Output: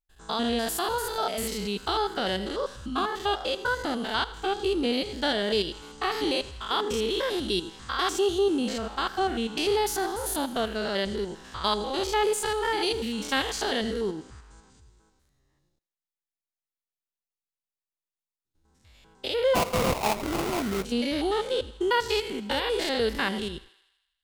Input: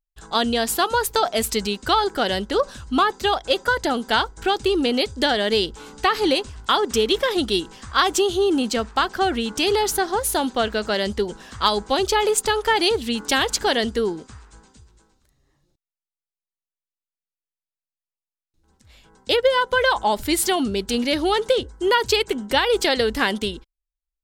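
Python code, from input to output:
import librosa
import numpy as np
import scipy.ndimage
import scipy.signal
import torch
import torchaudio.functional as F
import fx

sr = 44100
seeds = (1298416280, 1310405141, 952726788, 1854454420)

p1 = fx.spec_steps(x, sr, hold_ms=100)
p2 = p1 + fx.echo_thinned(p1, sr, ms=81, feedback_pct=63, hz=560.0, wet_db=-17.0, dry=0)
p3 = fx.sample_hold(p2, sr, seeds[0], rate_hz=1700.0, jitter_pct=20, at=(19.54, 20.84), fade=0.02)
y = p3 * 10.0 ** (-3.5 / 20.0)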